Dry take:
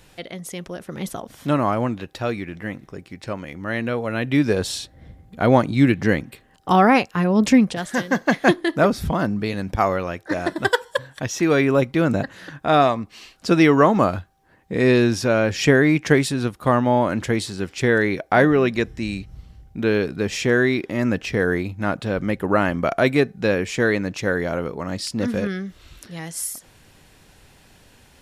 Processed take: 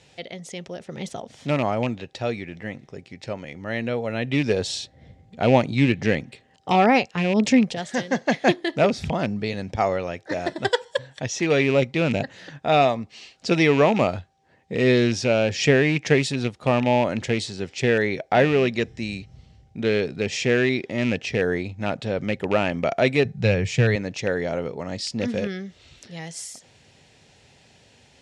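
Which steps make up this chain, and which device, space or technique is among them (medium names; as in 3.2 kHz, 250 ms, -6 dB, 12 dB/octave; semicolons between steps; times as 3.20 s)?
car door speaker with a rattle (rattle on loud lows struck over -20 dBFS, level -18 dBFS; cabinet simulation 100–7500 Hz, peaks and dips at 190 Hz -4 dB, 310 Hz -7 dB, 1.1 kHz -9 dB, 1.5 kHz -7 dB); 23.25–23.96 s: resonant low shelf 190 Hz +10.5 dB, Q 1.5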